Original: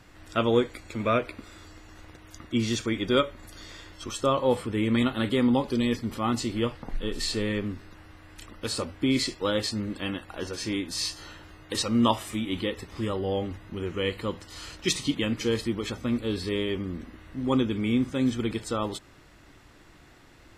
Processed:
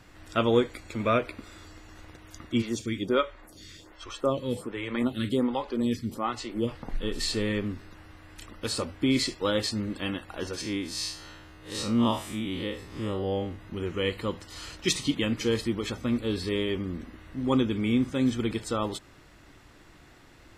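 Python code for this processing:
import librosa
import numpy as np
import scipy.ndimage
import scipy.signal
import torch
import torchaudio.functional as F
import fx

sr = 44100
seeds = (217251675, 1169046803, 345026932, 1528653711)

y = fx.stagger_phaser(x, sr, hz=1.3, at=(2.61, 6.67), fade=0.02)
y = fx.spec_blur(y, sr, span_ms=103.0, at=(10.61, 13.59))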